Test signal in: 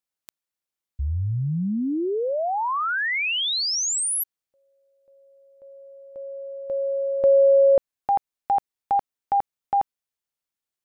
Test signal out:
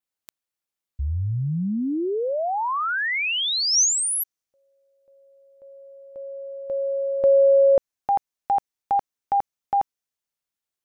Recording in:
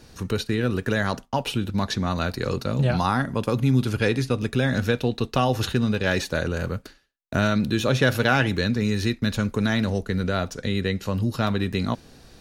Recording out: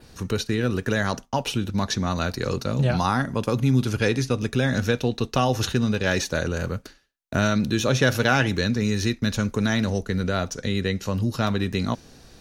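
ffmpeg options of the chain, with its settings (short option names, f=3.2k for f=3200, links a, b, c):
-af "adynamicequalizer=threshold=0.00224:dfrequency=6000:dqfactor=3.6:tfrequency=6000:tqfactor=3.6:attack=5:release=100:ratio=0.375:range=4:mode=boostabove:tftype=bell"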